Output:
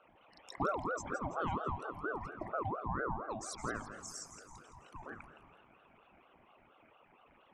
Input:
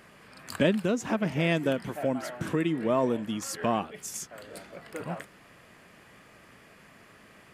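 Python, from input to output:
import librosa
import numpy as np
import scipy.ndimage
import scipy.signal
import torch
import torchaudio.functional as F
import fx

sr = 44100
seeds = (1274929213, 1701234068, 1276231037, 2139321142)

y = fx.envelope_sharpen(x, sr, power=3.0)
y = fx.peak_eq(y, sr, hz=860.0, db=-8.0, octaves=1.1)
y = fx.echo_thinned(y, sr, ms=166, feedback_pct=47, hz=360.0, wet_db=-10.0)
y = fx.rev_spring(y, sr, rt60_s=3.1, pass_ms=(39,), chirp_ms=70, drr_db=11.5)
y = fx.ring_lfo(y, sr, carrier_hz=710.0, swing_pct=40, hz=4.3)
y = F.gain(torch.from_numpy(y), -6.0).numpy()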